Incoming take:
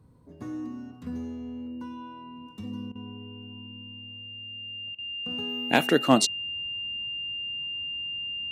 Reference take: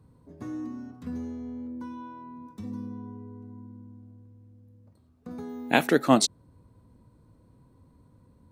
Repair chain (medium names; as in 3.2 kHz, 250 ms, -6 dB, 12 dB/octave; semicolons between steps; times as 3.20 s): clip repair -7 dBFS; band-stop 2.8 kHz, Q 30; interpolate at 2.92/4.95 s, 33 ms